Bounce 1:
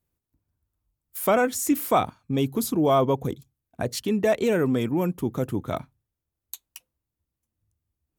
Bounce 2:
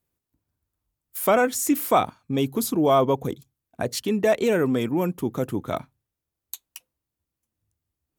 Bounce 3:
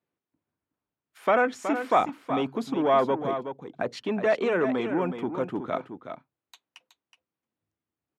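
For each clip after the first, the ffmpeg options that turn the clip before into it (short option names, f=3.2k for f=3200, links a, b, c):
-af "lowshelf=f=130:g=-7.5,volume=2dB"
-filter_complex "[0:a]acrossover=split=780[a][b];[a]asoftclip=type=tanh:threshold=-22dB[c];[c][b]amix=inputs=2:normalize=0,highpass=200,lowpass=2.6k,aecho=1:1:371:0.355"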